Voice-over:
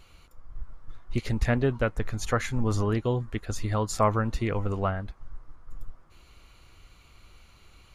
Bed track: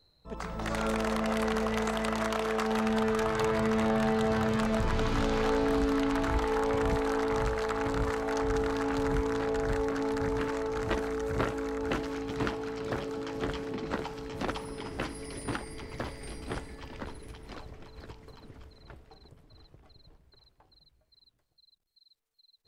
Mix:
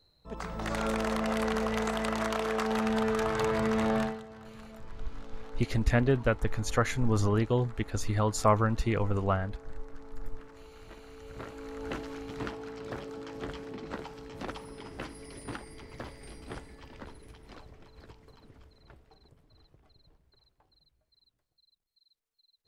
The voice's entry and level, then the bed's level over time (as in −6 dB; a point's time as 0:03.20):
4.45 s, −0.5 dB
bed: 0:04.01 −0.5 dB
0:04.26 −20.5 dB
0:10.96 −20.5 dB
0:11.87 −5.5 dB